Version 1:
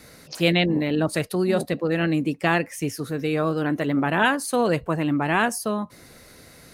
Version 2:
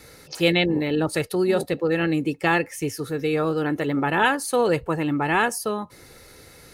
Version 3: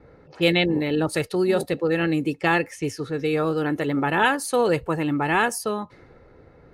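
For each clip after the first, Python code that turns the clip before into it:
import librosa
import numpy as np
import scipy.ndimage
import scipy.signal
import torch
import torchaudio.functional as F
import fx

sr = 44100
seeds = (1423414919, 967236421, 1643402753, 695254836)

y1 = x + 0.42 * np.pad(x, (int(2.3 * sr / 1000.0), 0))[:len(x)]
y2 = fx.env_lowpass(y1, sr, base_hz=870.0, full_db=-21.0)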